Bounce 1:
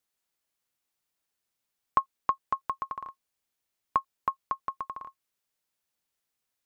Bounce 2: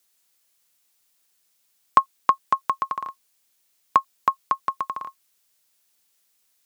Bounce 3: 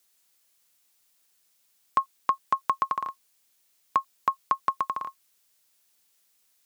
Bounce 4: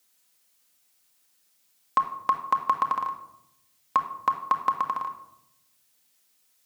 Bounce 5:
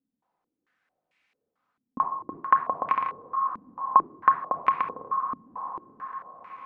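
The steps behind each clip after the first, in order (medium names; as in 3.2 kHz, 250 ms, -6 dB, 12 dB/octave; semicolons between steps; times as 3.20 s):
high-pass 110 Hz 12 dB/octave; treble shelf 2.7 kHz +10 dB; trim +7 dB
peak limiter -11 dBFS, peak gain reduction 9 dB
simulated room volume 2200 m³, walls furnished, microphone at 2 m
echo that smears into a reverb 932 ms, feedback 57%, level -11 dB; step-sequenced low-pass 4.5 Hz 250–2300 Hz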